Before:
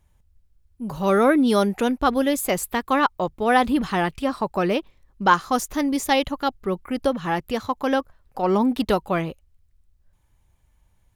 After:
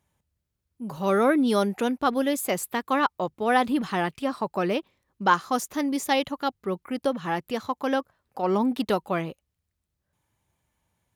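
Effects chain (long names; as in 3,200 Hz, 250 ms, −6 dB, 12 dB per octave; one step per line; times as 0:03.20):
high-pass filter 130 Hz 12 dB per octave
level −3.5 dB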